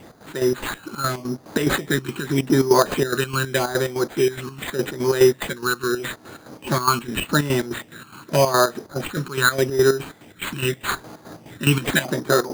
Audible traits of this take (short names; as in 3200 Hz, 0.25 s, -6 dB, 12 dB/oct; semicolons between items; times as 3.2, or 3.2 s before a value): phasing stages 12, 0.83 Hz, lowest notch 590–4000 Hz; aliases and images of a low sample rate 5500 Hz, jitter 0%; chopped level 4.8 Hz, depth 65%, duty 55%